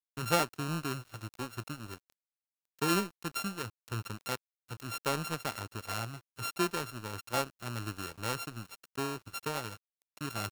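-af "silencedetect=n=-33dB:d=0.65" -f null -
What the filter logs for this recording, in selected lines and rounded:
silence_start: 1.94
silence_end: 2.82 | silence_duration: 0.88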